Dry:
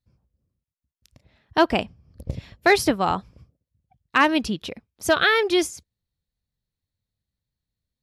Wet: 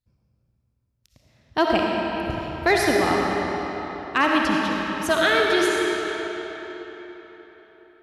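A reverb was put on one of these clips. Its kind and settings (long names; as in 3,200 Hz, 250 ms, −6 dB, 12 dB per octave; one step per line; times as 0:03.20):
comb and all-pass reverb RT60 4.3 s, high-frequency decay 0.75×, pre-delay 25 ms, DRR −2 dB
level −3 dB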